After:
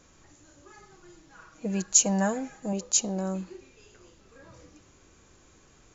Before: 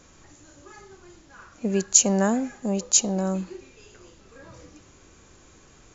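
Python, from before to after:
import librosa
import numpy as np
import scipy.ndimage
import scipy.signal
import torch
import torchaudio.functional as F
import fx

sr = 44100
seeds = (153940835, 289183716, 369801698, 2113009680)

y = fx.comb(x, sr, ms=6.3, depth=0.65, at=(0.82, 2.73))
y = y * librosa.db_to_amplitude(-5.0)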